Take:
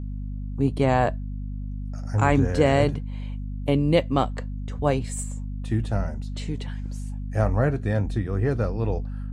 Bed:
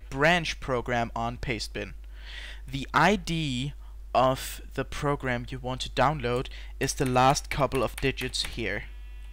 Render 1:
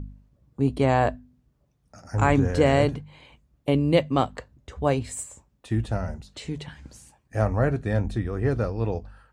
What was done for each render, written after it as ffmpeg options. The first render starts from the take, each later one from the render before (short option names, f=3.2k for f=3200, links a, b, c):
-af "bandreject=f=50:t=h:w=4,bandreject=f=100:t=h:w=4,bandreject=f=150:t=h:w=4,bandreject=f=200:t=h:w=4,bandreject=f=250:t=h:w=4"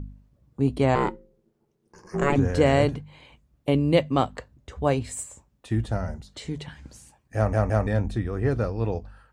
-filter_complex "[0:a]asettb=1/sr,asplit=3[a][b][c];[a]atrim=end=0.954[d];[b]atrim=start=0.95:end=2.36,asetpts=PTS-STARTPTS,afade=t=in:d=0.004:c=qsin,afade=t=out:st=1.406:d=0.004:c=qsin,aeval=exprs='val(0)*sin(2*PI*280*n/s)':c=same[e];[c]atrim=start=2.356[f];[d][e]acrossfade=d=0.004:c1=hsin:c2=qsin[g];[g][f]acrossfade=d=0.004:c1=qsin:c2=hsin,asettb=1/sr,asplit=3[h][i][j];[h]atrim=end=5.764[k];[i]atrim=start=5.76:end=6.6,asetpts=PTS-STARTPTS,afade=t=in:d=0.004:c=qsin,afade=t=out:st=0.836:d=0.004:c=qsin,bandreject=f=2.6k:w=9.6[l];[j]atrim=start=6.596[m];[k][l]acrossfade=d=0.004:c1=hsin:c2=qsin[n];[n][m]acrossfade=d=0.004:c1=qsin:c2=hsin,asplit=4[o][p][q][r];[o]atrim=end=7.532[s];[p]atrim=start=7.358:end=7.532[t];[q]atrim=start=7.358:end=7.532[u];[r]atrim=start=7.868[v];[s][t]acrossfade=d=0.004:c1=hsin:c2=hsin[w];[w][u]acrossfade=d=0.004:c1=hsin:c2=hsin[x];[x][v]acrossfade=d=0.004:c1=hsin:c2=hsin"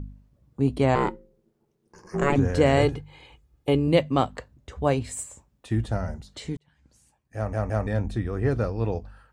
-filter_complex "[0:a]asettb=1/sr,asplit=3[a][b][c];[a]atrim=end=2.774[d];[b]atrim=start=2.77:end=3.88,asetpts=PTS-STARTPTS,afade=t=in:d=0.004:c=qsin,afade=t=out:st=1.106:d=0.004:c=qsin,aecho=1:1:2.4:0.56,atrim=end_sample=48951[e];[c]atrim=start=3.876[f];[d][e]acrossfade=d=0.004:c1=hsin:c2=qsin[g];[g][f]acrossfade=d=0.004:c1=qsin:c2=hsin,asplit=2[h][i];[h]atrim=end=6.57,asetpts=PTS-STARTPTS,afade=t=out:st=6.566:d=0.004:c=hsin[j];[i]atrim=start=6.57,asetpts=PTS-STARTPTS,afade=t=in:d=1.73[k];[j][k]concat=n=2:v=0:a=1"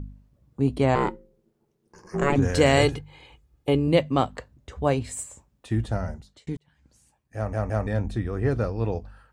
-filter_complex "[0:a]asettb=1/sr,asplit=3[a][b][c];[a]atrim=end=2.424[d];[b]atrim=start=2.42:end=2.99,asetpts=PTS-STARTPTS,afade=t=in:d=0.004:c=qsin,afade=t=out:st=0.566:d=0.004:c=qsin,highshelf=f=2.1k:g=9.5[e];[c]atrim=start=2.986[f];[d][e]acrossfade=d=0.004:c1=hsin:c2=qsin[g];[g][f]acrossfade=d=0.004:c1=qsin:c2=hsin,asplit=2[h][i];[h]atrim=end=6.47,asetpts=PTS-STARTPTS,afade=t=out:st=6.07:d=0.4[j];[i]atrim=start=6.47,asetpts=PTS-STARTPTS,afade=t=in:d=0.004:c=hsin[k];[j][k]concat=n=2:v=0:a=1"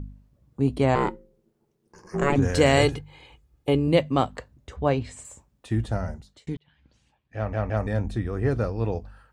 -filter_complex "[0:a]asettb=1/sr,asplit=3[a][b][c];[a]atrim=end=4.764[d];[b]atrim=start=4.76:end=5.25,asetpts=PTS-STARTPTS,afade=t=in:d=0.004:c=qsin,afade=t=out:st=0.486:d=0.004:c=qsin,lowpass=4.8k[e];[c]atrim=start=5.246[f];[d][e]acrossfade=d=0.004:c1=hsin:c2=qsin[g];[g][f]acrossfade=d=0.004:c1=qsin:c2=hsin,asettb=1/sr,asplit=3[h][i][j];[h]atrim=end=6.544[k];[i]atrim=start=6.54:end=7.77,asetpts=PTS-STARTPTS,afade=t=in:d=0.004:c=qsin,afade=t=out:st=1.226:d=0.004:c=qsin,lowpass=f=3.3k:t=q:w=2.2[l];[j]atrim=start=7.766[m];[k][l]acrossfade=d=0.004:c1=hsin:c2=qsin[n];[n][m]acrossfade=d=0.004:c1=qsin:c2=hsin"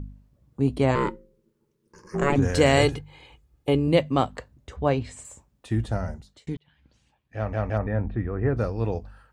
-filter_complex "[0:a]asettb=1/sr,asplit=3[a][b][c];[a]atrim=end=0.914[d];[b]atrim=start=0.91:end=2.15,asetpts=PTS-STARTPTS,afade=t=in:d=0.004:c=qsin,afade=t=out:st=1.236:d=0.004:c=qsin,asuperstop=centerf=730:order=4:qfactor=2.7[e];[c]atrim=start=2.146[f];[d][e]acrossfade=d=0.004:c1=hsin:c2=qsin[g];[g][f]acrossfade=d=0.004:c1=qsin:c2=hsin,asplit=3[h][i][j];[h]afade=t=out:st=7.77:d=0.02[k];[i]lowpass=f=2.3k:w=0.5412,lowpass=f=2.3k:w=1.3066,afade=t=in:st=7.77:d=0.02,afade=t=out:st=8.56:d=0.02[l];[j]afade=t=in:st=8.56:d=0.02[m];[k][l][m]amix=inputs=3:normalize=0"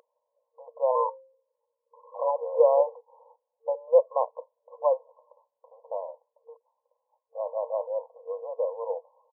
-af "afftfilt=real='re*between(b*sr/4096,460,1100)':imag='im*between(b*sr/4096,460,1100)':win_size=4096:overlap=0.75,aecho=1:1:2:0.49"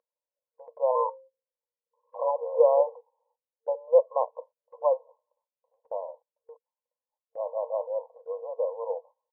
-af "aemphasis=mode=reproduction:type=75kf,agate=range=-20dB:threshold=-49dB:ratio=16:detection=peak"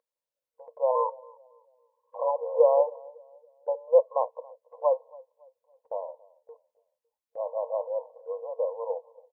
-filter_complex "[0:a]asplit=2[a][b];[b]adelay=278,lowpass=f=850:p=1,volume=-22dB,asplit=2[c][d];[d]adelay=278,lowpass=f=850:p=1,volume=0.46,asplit=2[e][f];[f]adelay=278,lowpass=f=850:p=1,volume=0.46[g];[a][c][e][g]amix=inputs=4:normalize=0"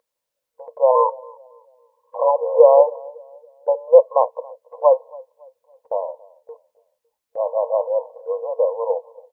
-af "volume=10dB,alimiter=limit=-1dB:level=0:latency=1"